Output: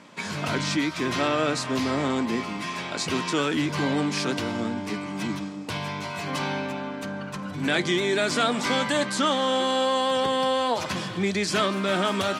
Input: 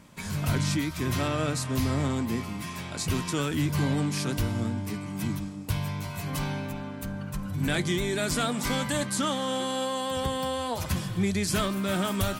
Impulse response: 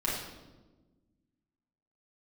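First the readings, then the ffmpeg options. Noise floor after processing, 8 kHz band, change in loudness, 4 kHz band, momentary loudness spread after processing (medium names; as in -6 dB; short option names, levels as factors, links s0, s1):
-35 dBFS, -0.5 dB, +3.5 dB, +5.5 dB, 9 LU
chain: -filter_complex "[0:a]asplit=2[s0][s1];[s1]alimiter=limit=0.0708:level=0:latency=1,volume=0.708[s2];[s0][s2]amix=inputs=2:normalize=0,highpass=270,lowpass=5400,volume=1.41"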